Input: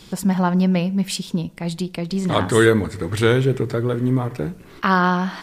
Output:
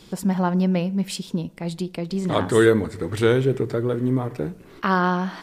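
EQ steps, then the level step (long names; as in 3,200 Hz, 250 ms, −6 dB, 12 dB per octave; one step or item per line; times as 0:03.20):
parametric band 410 Hz +4.5 dB 2 octaves
−5.0 dB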